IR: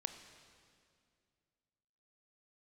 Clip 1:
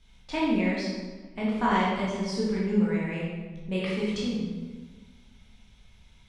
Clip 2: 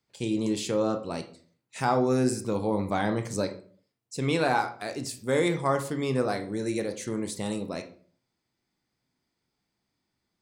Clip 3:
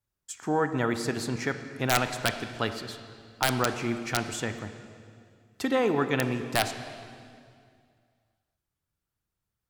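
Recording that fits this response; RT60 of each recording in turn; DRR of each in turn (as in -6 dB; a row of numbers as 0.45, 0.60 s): 3; 1.4, 0.45, 2.3 s; -6.5, 7.0, 8.0 dB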